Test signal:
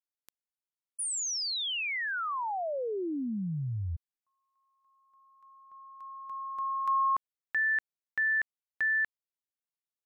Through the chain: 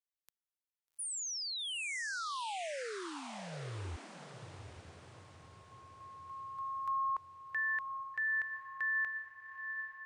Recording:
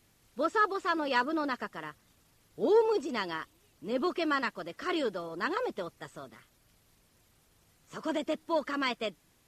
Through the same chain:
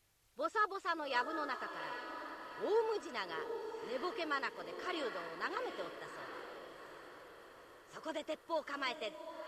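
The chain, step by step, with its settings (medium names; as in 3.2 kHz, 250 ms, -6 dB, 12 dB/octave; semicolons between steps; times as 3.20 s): peaking EQ 220 Hz -11.5 dB 1.2 oct; on a send: echo that smears into a reverb 807 ms, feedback 51%, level -8 dB; on the sum: trim -6.5 dB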